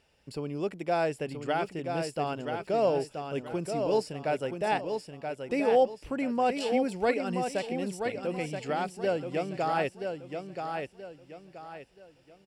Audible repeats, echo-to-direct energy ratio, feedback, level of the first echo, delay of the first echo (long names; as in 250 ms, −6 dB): 4, −5.5 dB, 33%, −6.0 dB, 978 ms